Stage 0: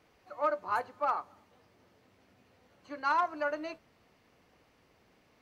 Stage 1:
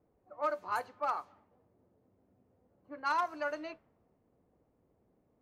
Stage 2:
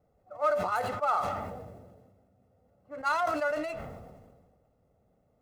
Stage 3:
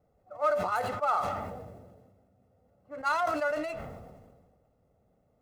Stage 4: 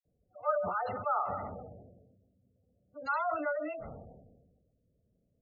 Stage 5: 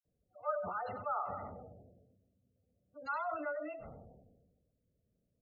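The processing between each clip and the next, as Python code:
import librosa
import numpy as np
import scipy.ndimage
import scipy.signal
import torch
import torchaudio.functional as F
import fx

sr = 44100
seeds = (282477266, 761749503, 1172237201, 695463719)

y1 = fx.env_lowpass(x, sr, base_hz=550.0, full_db=-28.0)
y1 = fx.high_shelf(y1, sr, hz=4900.0, db=10.5)
y1 = y1 * librosa.db_to_amplitude(-3.5)
y2 = scipy.ndimage.median_filter(y1, 9, mode='constant')
y2 = y2 + 0.59 * np.pad(y2, (int(1.5 * sr / 1000.0), 0))[:len(y2)]
y2 = fx.sustainer(y2, sr, db_per_s=36.0)
y2 = y2 * librosa.db_to_amplitude(2.5)
y3 = y2
y4 = fx.env_lowpass(y3, sr, base_hz=370.0, full_db=-28.5)
y4 = fx.dispersion(y4, sr, late='lows', ms=53.0, hz=1300.0)
y4 = fx.spec_gate(y4, sr, threshold_db=-20, keep='strong')
y4 = y4 * librosa.db_to_amplitude(-3.5)
y5 = y4 + 10.0 ** (-17.5 / 20.0) * np.pad(y4, (int(96 * sr / 1000.0), 0))[:len(y4)]
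y5 = y5 * librosa.db_to_amplitude(-5.5)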